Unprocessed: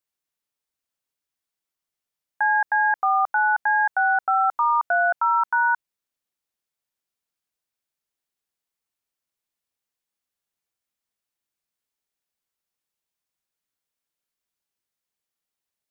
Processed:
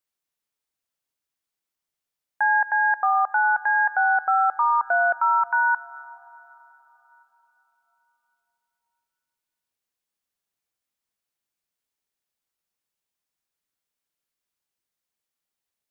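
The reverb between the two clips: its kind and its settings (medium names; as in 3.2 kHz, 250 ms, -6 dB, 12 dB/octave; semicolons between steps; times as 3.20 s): plate-style reverb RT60 4.2 s, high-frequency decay 0.95×, DRR 18 dB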